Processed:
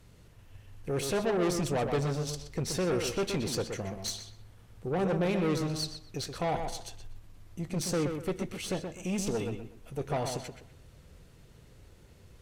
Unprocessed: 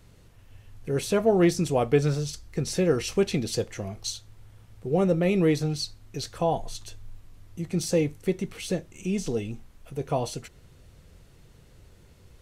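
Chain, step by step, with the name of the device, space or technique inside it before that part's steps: rockabilly slapback (valve stage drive 26 dB, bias 0.5; tape echo 124 ms, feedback 31%, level -4.5 dB, low-pass 2.8 kHz); 9.05–9.50 s: treble shelf 5.9 kHz +7 dB

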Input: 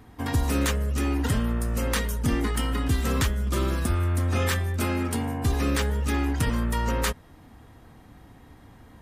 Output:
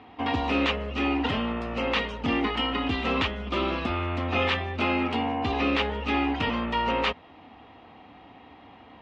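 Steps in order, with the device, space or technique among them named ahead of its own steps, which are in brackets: overdrive pedal into a guitar cabinet (overdrive pedal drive 11 dB, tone 7.8 kHz, clips at -13.5 dBFS; cabinet simulation 79–3600 Hz, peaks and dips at 130 Hz -9 dB, 270 Hz +3 dB, 760 Hz +5 dB, 1.6 kHz -9 dB, 2.7 kHz +6 dB)

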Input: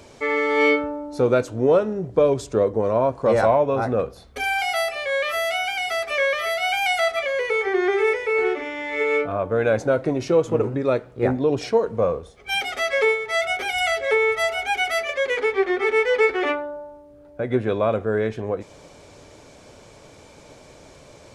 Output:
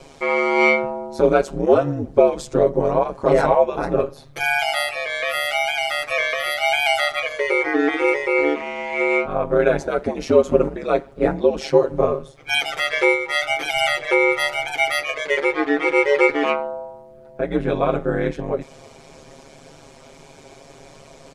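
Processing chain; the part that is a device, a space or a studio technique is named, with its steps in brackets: ring-modulated robot voice (ring modulator 73 Hz; comb 7.4 ms, depth 90%); trim +2.5 dB

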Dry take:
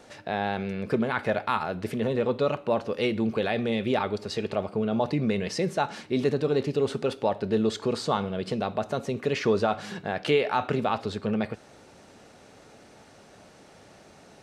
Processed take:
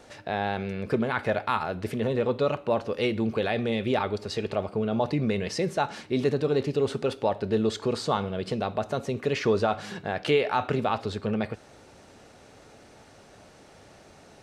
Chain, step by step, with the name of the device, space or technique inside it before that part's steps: low shelf boost with a cut just above (bass shelf 100 Hz +6 dB; peaking EQ 190 Hz -3 dB 0.77 oct)

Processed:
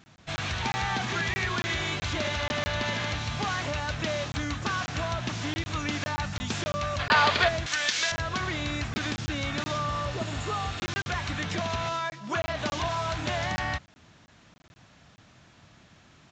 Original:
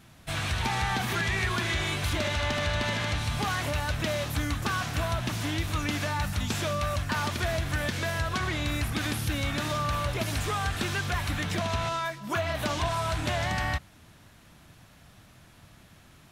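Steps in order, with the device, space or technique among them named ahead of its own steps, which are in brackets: call with lost packets (high-pass 100 Hz 6 dB/octave; resampled via 16 kHz; lost packets of 20 ms random); 6.99–7.48 s: time-frequency box 390–5000 Hz +10 dB; 7.66–8.12 s: frequency weighting ITU-R 468; 9.90–10.75 s: spectral replace 1.4–6.6 kHz

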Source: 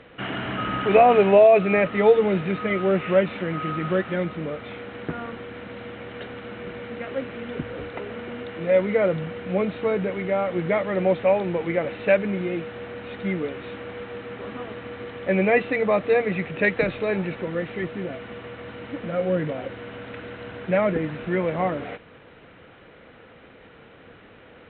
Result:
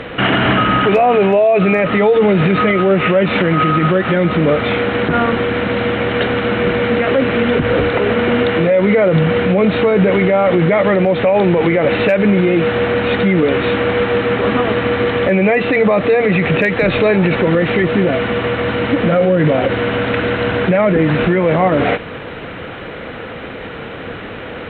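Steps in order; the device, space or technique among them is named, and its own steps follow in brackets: loud club master (compression 2.5:1, threshold -24 dBFS, peak gain reduction 9.5 dB; hard clipper -14.5 dBFS, distortion -46 dB; loudness maximiser +24.5 dB); trim -4 dB

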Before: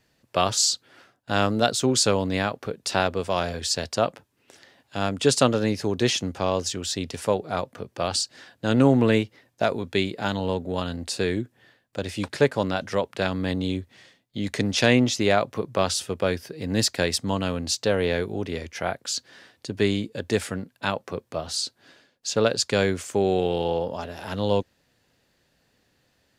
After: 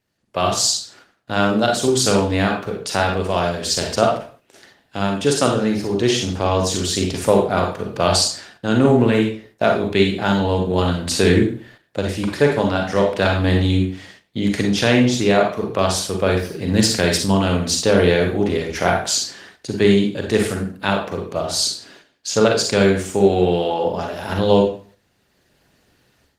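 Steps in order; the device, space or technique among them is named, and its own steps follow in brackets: speakerphone in a meeting room (reverberation RT60 0.45 s, pre-delay 37 ms, DRR 1 dB; level rider gain up to 14 dB; gate -43 dBFS, range -6 dB; trim -1 dB; Opus 20 kbps 48 kHz)

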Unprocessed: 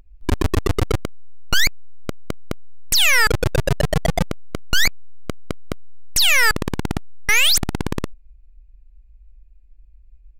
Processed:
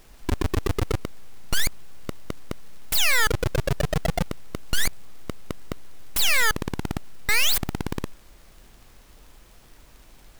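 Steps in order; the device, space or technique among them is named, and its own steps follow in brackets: record under a worn stylus (tracing distortion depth 0.16 ms; crackle; pink noise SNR 30 dB); trim -5.5 dB

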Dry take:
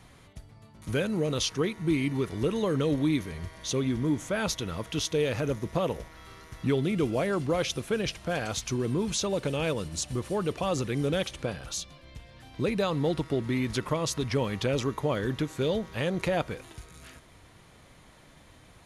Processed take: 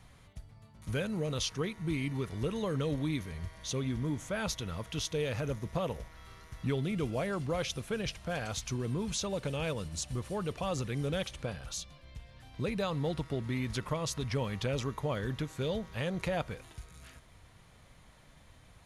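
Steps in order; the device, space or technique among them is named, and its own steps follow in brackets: low shelf boost with a cut just above (bass shelf 97 Hz +6.5 dB; peaking EQ 330 Hz -5.5 dB 0.74 oct); trim -5 dB

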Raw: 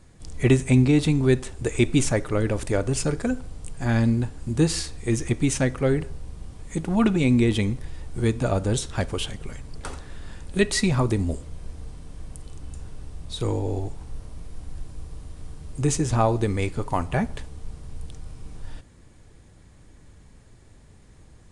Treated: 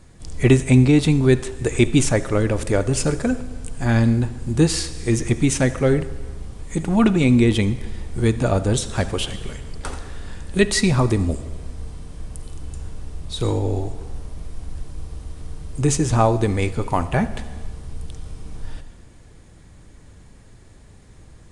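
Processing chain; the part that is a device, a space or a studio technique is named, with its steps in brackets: compressed reverb return (on a send at -8.5 dB: reverberation RT60 1.1 s, pre-delay 67 ms + compression, threshold -27 dBFS, peak gain reduction 12.5 dB); on the sum: trim +4 dB

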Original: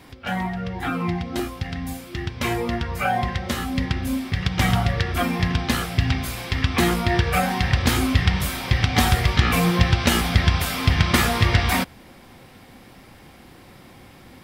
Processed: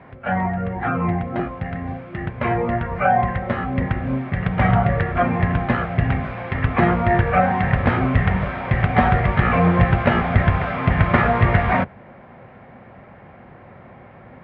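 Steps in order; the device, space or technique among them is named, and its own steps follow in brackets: sub-octave bass pedal (octave divider, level -4 dB; cabinet simulation 63–2000 Hz, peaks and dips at 73 Hz -10 dB, 300 Hz -9 dB, 620 Hz +7 dB); trim +4 dB

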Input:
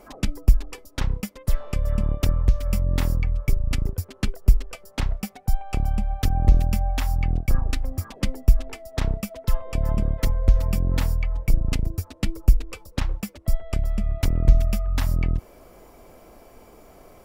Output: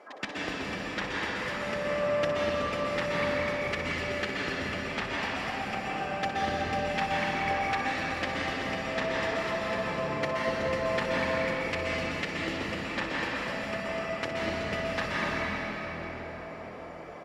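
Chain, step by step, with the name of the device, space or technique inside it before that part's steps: station announcement (band-pass 450–3600 Hz; peaking EQ 1.8 kHz +7.5 dB 0.32 oct; loudspeakers at several distances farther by 21 m -10 dB, 58 m -11 dB; reverberation RT60 5.1 s, pre-delay 118 ms, DRR -7 dB); trim -1 dB

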